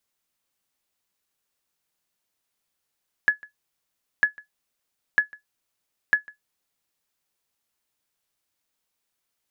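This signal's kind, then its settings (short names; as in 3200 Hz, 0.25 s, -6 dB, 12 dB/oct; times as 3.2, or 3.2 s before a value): sonar ping 1700 Hz, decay 0.13 s, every 0.95 s, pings 4, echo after 0.15 s, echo -24.5 dB -9 dBFS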